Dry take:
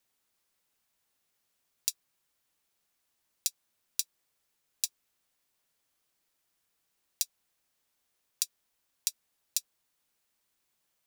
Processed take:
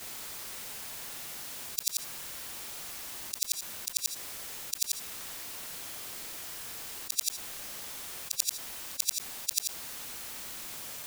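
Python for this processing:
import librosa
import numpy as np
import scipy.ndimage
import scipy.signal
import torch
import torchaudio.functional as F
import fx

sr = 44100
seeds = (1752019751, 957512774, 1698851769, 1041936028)

y = fx.frame_reverse(x, sr, frame_ms=179.0)
y = fx.env_flatten(y, sr, amount_pct=70)
y = y * 10.0 ** (4.5 / 20.0)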